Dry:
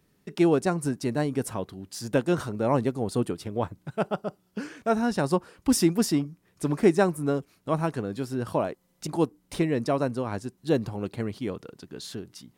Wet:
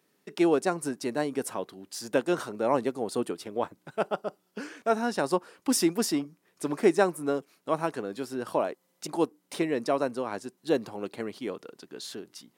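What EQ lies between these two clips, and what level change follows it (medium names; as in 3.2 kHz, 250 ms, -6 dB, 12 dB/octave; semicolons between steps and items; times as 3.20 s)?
high-pass 300 Hz 12 dB/octave; 0.0 dB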